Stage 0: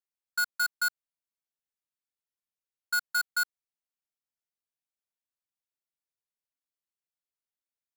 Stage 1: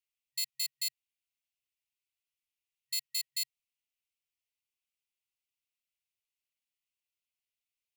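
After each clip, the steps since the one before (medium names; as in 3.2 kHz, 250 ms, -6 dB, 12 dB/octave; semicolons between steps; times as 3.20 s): peaking EQ 2.7 kHz +9 dB 0.6 oct; FFT band-reject 130–1900 Hz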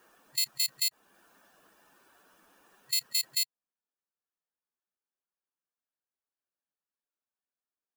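expander on every frequency bin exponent 1.5; swell ahead of each attack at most 21 dB/s; trim +5.5 dB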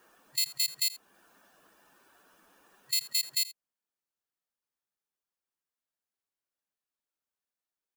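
delay 82 ms -17.5 dB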